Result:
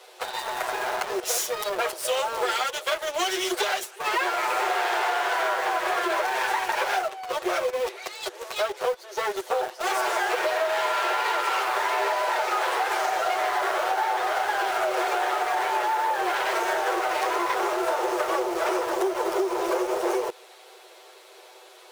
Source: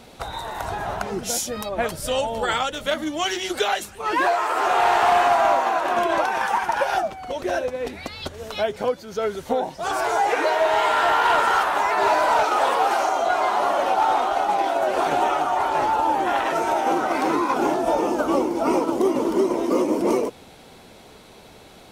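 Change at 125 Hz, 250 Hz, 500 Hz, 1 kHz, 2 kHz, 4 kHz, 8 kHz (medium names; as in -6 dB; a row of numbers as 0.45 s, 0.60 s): under -15 dB, -9.0 dB, -4.5 dB, -5.0 dB, -0.5 dB, -0.5 dB, 0.0 dB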